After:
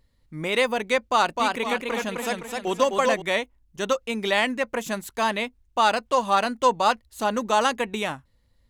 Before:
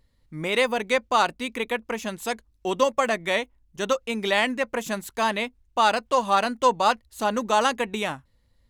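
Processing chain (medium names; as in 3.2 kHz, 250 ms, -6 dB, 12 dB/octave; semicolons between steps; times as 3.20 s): 0.99–3.22 s: modulated delay 256 ms, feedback 43%, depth 94 cents, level -3.5 dB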